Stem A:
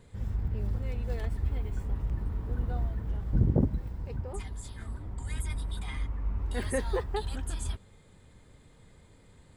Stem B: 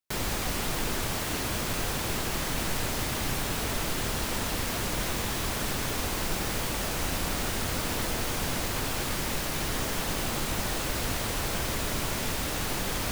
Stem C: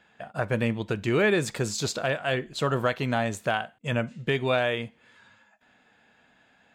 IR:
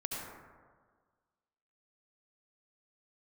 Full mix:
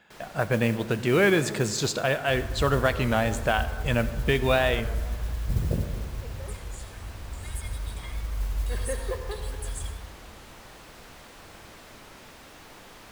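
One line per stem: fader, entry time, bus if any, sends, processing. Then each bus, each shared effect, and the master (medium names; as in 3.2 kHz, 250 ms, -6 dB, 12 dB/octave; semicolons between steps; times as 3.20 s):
-8.0 dB, 2.15 s, send -3.5 dB, treble shelf 5 kHz +8.5 dB; comb 1.8 ms, depth 52%
-16.5 dB, 0.00 s, send -7.5 dB, bass shelf 260 Hz -8.5 dB; slew-rate limiter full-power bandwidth 73 Hz
+0.5 dB, 0.00 s, send -13 dB, none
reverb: on, RT60 1.6 s, pre-delay 62 ms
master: modulation noise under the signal 24 dB; warped record 33 1/3 rpm, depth 100 cents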